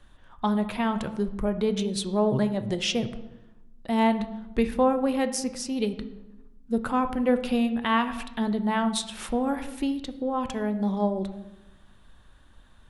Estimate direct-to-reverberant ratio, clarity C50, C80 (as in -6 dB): 9.0 dB, 12.5 dB, 14.5 dB